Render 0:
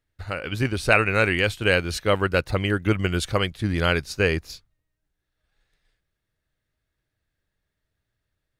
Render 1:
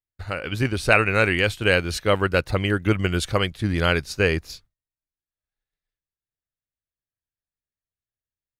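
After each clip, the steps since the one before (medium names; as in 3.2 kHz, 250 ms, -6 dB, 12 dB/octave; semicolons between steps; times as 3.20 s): gate with hold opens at -41 dBFS; trim +1 dB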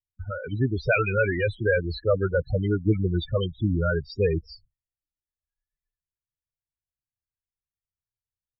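loudest bins only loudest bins 8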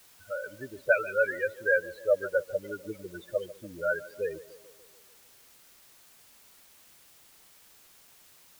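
two resonant band-passes 960 Hz, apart 1.4 oct; tape echo 147 ms, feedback 67%, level -15.5 dB, low-pass 1.1 kHz; word length cut 10-bit, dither triangular; trim +2.5 dB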